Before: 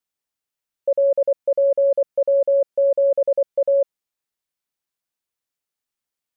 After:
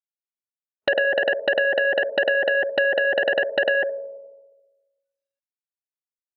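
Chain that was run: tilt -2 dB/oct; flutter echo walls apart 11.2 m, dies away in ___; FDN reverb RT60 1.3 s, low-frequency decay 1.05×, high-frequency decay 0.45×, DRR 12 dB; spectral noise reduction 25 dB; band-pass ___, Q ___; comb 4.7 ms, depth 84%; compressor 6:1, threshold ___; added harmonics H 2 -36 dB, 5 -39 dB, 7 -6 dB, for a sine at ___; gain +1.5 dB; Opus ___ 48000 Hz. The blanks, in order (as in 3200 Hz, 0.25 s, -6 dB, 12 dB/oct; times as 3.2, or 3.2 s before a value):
0.23 s, 540 Hz, 0.94, -21 dBFS, -13 dBFS, 96 kbps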